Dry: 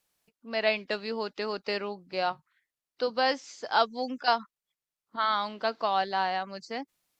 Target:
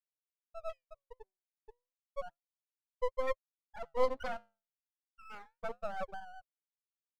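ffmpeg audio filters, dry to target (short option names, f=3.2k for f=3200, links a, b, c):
-filter_complex "[0:a]asplit=2[a][b];[b]asoftclip=type=tanh:threshold=-23dB,volume=-11dB[c];[a][c]amix=inputs=2:normalize=0,asettb=1/sr,asplit=3[d][e][f];[d]atrim=end=5.304[g];[e]atrim=start=5.3:end=6.2,asetpts=PTS-STARTPTS,afade=t=in:d=0.004:c=qsin,afade=t=out:st=0.896:d=0.004:c=qsin,acontrast=81[h];[f]atrim=start=6.196[i];[g][h]acrossfade=d=0.004:c1=hsin:c2=qsin[j];[j][i]acrossfade=d=0.004:c1=qsin:c2=hsin,asplit=2[k][l];[l]adelay=221.6,volume=-28dB,highshelf=f=4k:g=-4.99[m];[k][m]amix=inputs=2:normalize=0,asettb=1/sr,asplit=3[n][o][p];[n]atrim=end=3.904[q];[o]atrim=start=3.9:end=4.37,asetpts=PTS-STARTPTS,afade=t=in:d=0.004:c=qsin,afade=t=out:st=0.466:d=0.004:c=qsin,asplit=2[r][s];[s]highpass=f=720:p=1,volume=29dB,asoftclip=type=tanh:threshold=-9dB[t];[r][t]amix=inputs=2:normalize=0,lowpass=f=4.1k:p=1,volume=-6dB[u];[p]atrim=start=4.366[v];[q][u]acrossfade=d=0.004:c1=hsin:c2=qsin[w];[w][v]acrossfade=d=0.004:c1=qsin:c2=hsin,acontrast=75,lowshelf=f=200:g=-10,afftfilt=real='re*gte(hypot(re,im),0.708)':imag='im*gte(hypot(re,im),0.708)':win_size=1024:overlap=0.75,flanger=delay=3.6:depth=6:regen=-81:speed=0.32:shape=sinusoidal,asplit=3[x][y][z];[x]bandpass=f=530:t=q:w=8,volume=0dB[aa];[y]bandpass=f=1.84k:t=q:w=8,volume=-6dB[ab];[z]bandpass=f=2.48k:t=q:w=8,volume=-9dB[ac];[aa][ab][ac]amix=inputs=3:normalize=0,aeval=exprs='max(val(0),0)':c=same"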